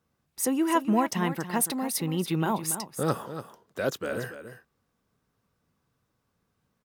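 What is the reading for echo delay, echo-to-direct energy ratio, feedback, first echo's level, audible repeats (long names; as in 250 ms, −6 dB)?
284 ms, −11.0 dB, repeats not evenly spaced, −11.0 dB, 1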